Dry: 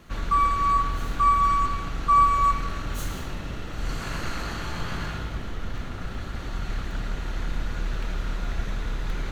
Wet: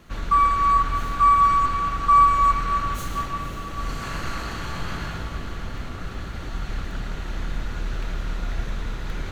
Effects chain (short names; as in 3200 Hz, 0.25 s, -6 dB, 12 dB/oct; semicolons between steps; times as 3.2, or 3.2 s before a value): diffused feedback echo 0.516 s, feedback 66%, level -11 dB; dynamic EQ 1400 Hz, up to +4 dB, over -33 dBFS, Q 0.83